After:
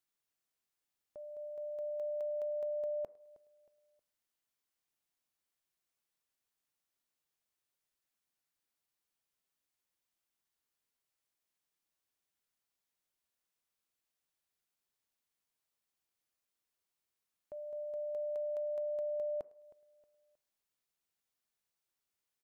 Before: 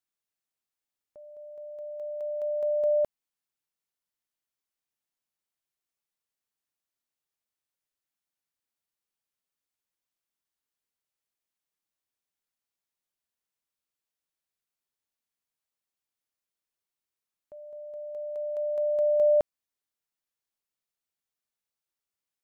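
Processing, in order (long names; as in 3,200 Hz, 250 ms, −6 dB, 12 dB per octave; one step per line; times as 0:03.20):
downward compressor 16 to 1, threshold −35 dBFS, peak gain reduction 16 dB
repeating echo 315 ms, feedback 35%, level −20 dB
on a send at −18 dB: convolution reverb RT60 0.60 s, pre-delay 3 ms
on the sum: level +1 dB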